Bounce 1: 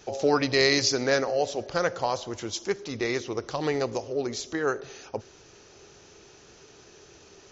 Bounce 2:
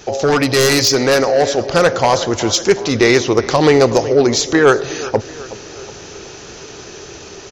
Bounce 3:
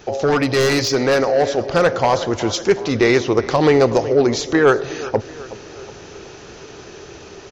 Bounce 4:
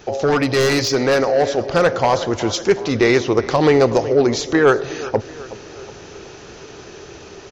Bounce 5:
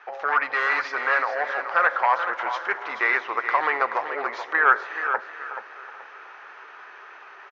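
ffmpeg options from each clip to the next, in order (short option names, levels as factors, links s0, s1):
-filter_complex "[0:a]asplit=2[s0][s1];[s1]adelay=370,lowpass=f=3300:p=1,volume=0.126,asplit=2[s2][s3];[s3]adelay=370,lowpass=f=3300:p=1,volume=0.52,asplit=2[s4][s5];[s5]adelay=370,lowpass=f=3300:p=1,volume=0.52,asplit=2[s6][s7];[s7]adelay=370,lowpass=f=3300:p=1,volume=0.52[s8];[s0][s2][s4][s6][s8]amix=inputs=5:normalize=0,aeval=exprs='0.376*sin(PI/2*2.82*val(0)/0.376)':c=same,dynaudnorm=f=330:g=11:m=2.11"
-af "equalizer=f=13000:t=o:w=1.8:g=-11.5,volume=0.75"
-af anull
-filter_complex "[0:a]asuperpass=centerf=1400:order=4:qfactor=1.3,asplit=2[s0][s1];[s1]aecho=0:1:429|858|1287:0.355|0.0958|0.0259[s2];[s0][s2]amix=inputs=2:normalize=0,volume=1.41"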